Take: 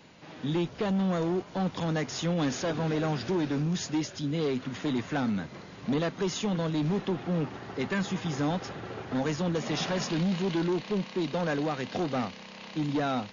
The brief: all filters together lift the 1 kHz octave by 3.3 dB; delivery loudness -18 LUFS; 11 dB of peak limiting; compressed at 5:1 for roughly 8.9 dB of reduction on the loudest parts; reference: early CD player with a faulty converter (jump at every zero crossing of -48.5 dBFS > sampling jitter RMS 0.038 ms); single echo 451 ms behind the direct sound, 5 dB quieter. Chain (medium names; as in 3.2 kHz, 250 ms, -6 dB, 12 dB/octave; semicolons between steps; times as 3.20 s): peaking EQ 1 kHz +4.5 dB; compression 5:1, threshold -35 dBFS; peak limiter -36.5 dBFS; delay 451 ms -5 dB; jump at every zero crossing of -48.5 dBFS; sampling jitter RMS 0.038 ms; trim +23 dB